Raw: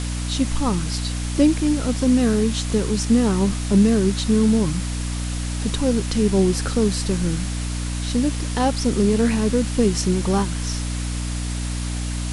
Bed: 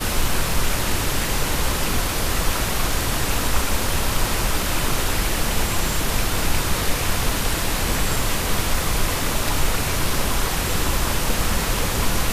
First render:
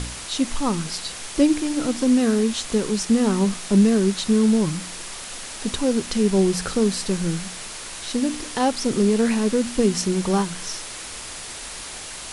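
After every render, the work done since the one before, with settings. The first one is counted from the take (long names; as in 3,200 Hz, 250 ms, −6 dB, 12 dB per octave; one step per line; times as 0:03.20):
hum removal 60 Hz, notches 5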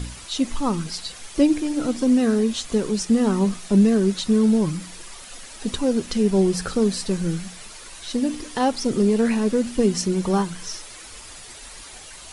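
broadband denoise 9 dB, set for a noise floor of −35 dBFS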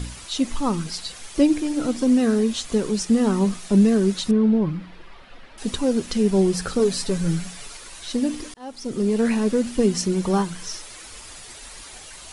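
0:04.31–0:05.58: high-frequency loss of the air 370 metres
0:06.79–0:07.77: comb filter 7.1 ms
0:08.54–0:09.28: fade in linear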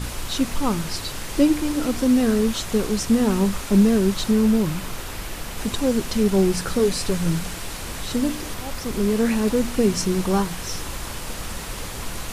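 mix in bed −10.5 dB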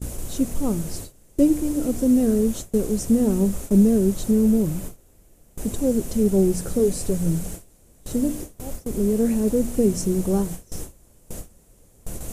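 flat-topped bell 2,100 Hz −14 dB 2.9 octaves
noise gate with hold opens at −20 dBFS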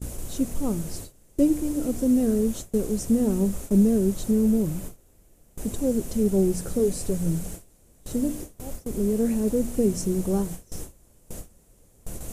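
level −3 dB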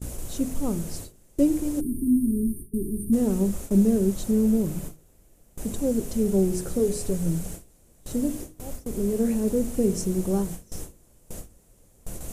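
hum removal 52.05 Hz, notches 9
0:01.81–0:03.13: time-frequency box erased 410–8,500 Hz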